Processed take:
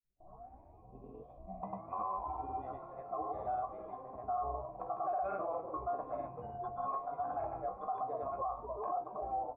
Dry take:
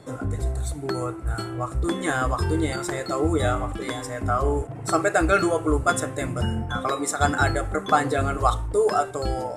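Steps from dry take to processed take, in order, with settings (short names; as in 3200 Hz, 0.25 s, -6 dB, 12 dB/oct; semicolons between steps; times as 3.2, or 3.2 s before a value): tape start at the beginning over 2.85 s; grains, pitch spread up and down by 0 st; gate with hold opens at -29 dBFS; vocal tract filter a; notch 890 Hz, Q 21; resonator 64 Hz, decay 0.17 s, harmonics all, mix 90%; frequency-shifting echo 0.248 s, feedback 55%, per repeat -110 Hz, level -16.5 dB; limiter -36 dBFS, peak gain reduction 17 dB; gain +7 dB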